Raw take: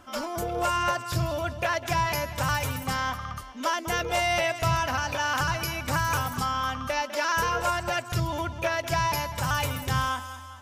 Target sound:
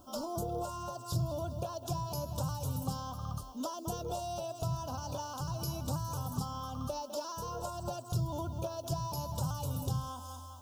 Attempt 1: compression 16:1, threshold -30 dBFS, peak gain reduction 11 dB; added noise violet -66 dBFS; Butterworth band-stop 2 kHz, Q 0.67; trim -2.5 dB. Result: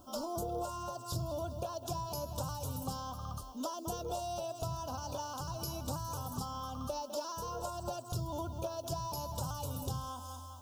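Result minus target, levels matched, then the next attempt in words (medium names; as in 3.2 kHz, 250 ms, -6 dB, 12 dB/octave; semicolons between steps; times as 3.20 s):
125 Hz band -3.0 dB
compression 16:1, threshold -30 dBFS, peak gain reduction 11 dB; added noise violet -66 dBFS; Butterworth band-stop 2 kHz, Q 0.67; dynamic bell 140 Hz, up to +7 dB, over -51 dBFS, Q 1.4; trim -2.5 dB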